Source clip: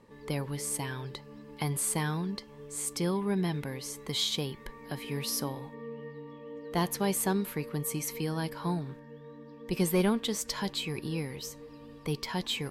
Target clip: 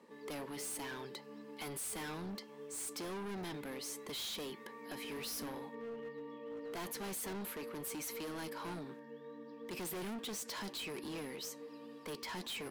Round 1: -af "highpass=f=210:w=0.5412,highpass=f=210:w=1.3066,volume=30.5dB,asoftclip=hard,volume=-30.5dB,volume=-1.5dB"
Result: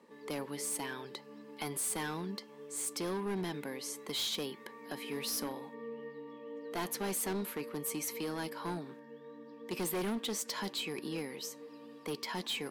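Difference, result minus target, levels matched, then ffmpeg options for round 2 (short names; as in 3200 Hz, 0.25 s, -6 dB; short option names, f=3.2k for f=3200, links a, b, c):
overloaded stage: distortion -6 dB
-af "highpass=f=210:w=0.5412,highpass=f=210:w=1.3066,volume=39dB,asoftclip=hard,volume=-39dB,volume=-1.5dB"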